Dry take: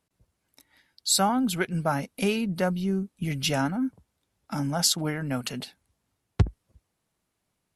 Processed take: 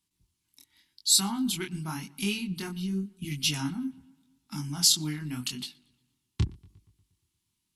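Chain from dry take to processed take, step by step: FFT filter 360 Hz 0 dB, 540 Hz -28 dB, 960 Hz -2 dB, 1.5 kHz -7 dB, 3.1 kHz +7 dB; on a send: filtered feedback delay 118 ms, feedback 58%, low-pass 4.1 kHz, level -24 dB; on the sum: chorus 0.87 Hz, delay 19.5 ms, depth 7.5 ms; trim -2 dB

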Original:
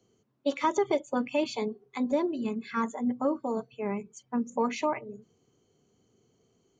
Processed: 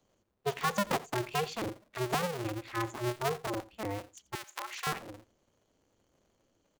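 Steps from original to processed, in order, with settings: cycle switcher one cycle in 2, inverted; 4.35–4.87 s: high-pass 1.3 kHz 12 dB/octave; delay 86 ms -20 dB; trim -4.5 dB

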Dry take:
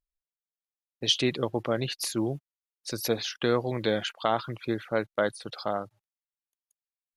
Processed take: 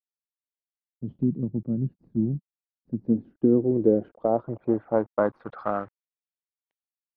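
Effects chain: companded quantiser 4-bit; treble shelf 2.6 kHz -11 dB; low-pass sweep 190 Hz -> 2.8 kHz, 2.81–6.63 s; dynamic bell 260 Hz, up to +6 dB, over -38 dBFS, Q 1.2

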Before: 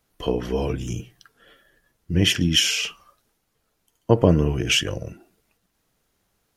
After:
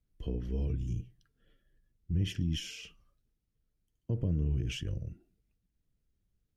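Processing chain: amplifier tone stack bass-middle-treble 10-0-1; peak limiter -29.5 dBFS, peak gain reduction 8 dB; treble shelf 3.3 kHz -10 dB; trim +6.5 dB

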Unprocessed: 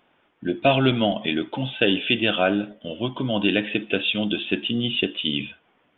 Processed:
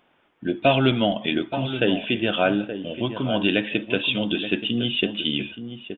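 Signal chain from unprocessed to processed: 1.79–2.32 s: treble shelf 3.3 kHz -> 2.8 kHz -11 dB; echo from a far wall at 150 m, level -10 dB

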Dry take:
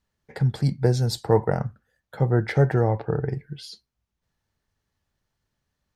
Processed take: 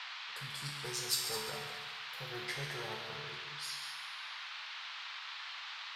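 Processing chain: valve stage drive 10 dB, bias 0.3; pre-emphasis filter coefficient 0.97; feedback comb 73 Hz, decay 0.72 s, harmonics all, mix 90%; multi-head delay 70 ms, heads second and third, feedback 41%, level -9.5 dB; band noise 920–4200 Hz -59 dBFS; trim +13.5 dB

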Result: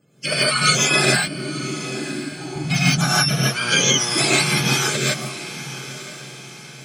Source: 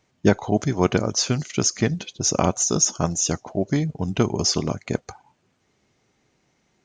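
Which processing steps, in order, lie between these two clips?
spectrum inverted on a logarithmic axis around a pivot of 960 Hz; comb of notches 960 Hz; compressor with a negative ratio -25 dBFS, ratio -1; 1.10–2.56 s: cascade formant filter u; 3.50–4.78 s: mains buzz 120 Hz, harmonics 30, -37 dBFS -3 dB/octave; on a send: echo that smears into a reverb 998 ms, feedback 42%, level -13.5 dB; on the sum: gated-style reverb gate 190 ms rising, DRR -6.5 dB

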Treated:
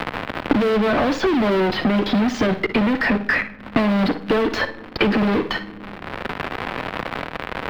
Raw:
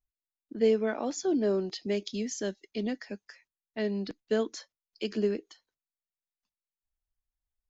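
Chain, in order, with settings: band-stop 410 Hz, Q 12; in parallel at -3 dB: integer overflow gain 30.5 dB; on the sum: bass shelf 400 Hz -4 dB; compression, threshold -35 dBFS, peak gain reduction 12 dB; fuzz box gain 61 dB, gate -58 dBFS; crackle 150 per s -26 dBFS; distance through air 420 m; flutter echo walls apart 9.9 m, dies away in 0.24 s; on a send at -18 dB: reverberation RT60 0.80 s, pre-delay 4 ms; on the sum: loudness maximiser +14 dB; three bands compressed up and down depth 100%; trim -13 dB

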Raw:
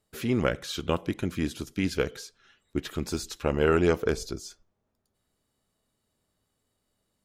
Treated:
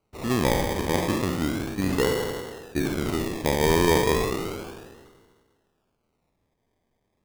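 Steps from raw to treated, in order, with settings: spectral sustain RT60 1.70 s; decimation with a swept rate 25×, swing 60% 0.33 Hz; 3.17–3.69 s: peaking EQ 1.2 kHz -7 dB 0.38 oct

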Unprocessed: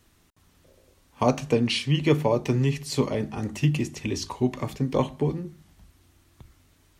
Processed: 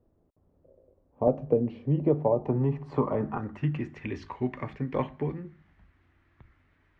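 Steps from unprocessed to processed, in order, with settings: low-pass sweep 560 Hz -> 1.9 kHz, 1.83–4.09 s; 1.27–3.38 s: three bands compressed up and down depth 70%; trim -6 dB

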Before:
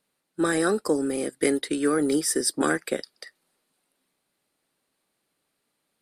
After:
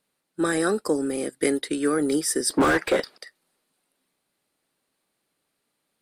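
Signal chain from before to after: 2.50–3.18 s: overdrive pedal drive 30 dB, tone 1.1 kHz, clips at -10 dBFS

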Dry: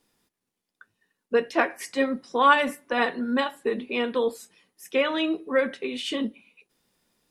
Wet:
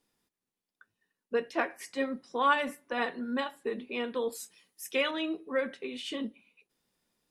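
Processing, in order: 4.32–5.11 s: treble shelf 2.7 kHz +11.5 dB; trim -7.5 dB

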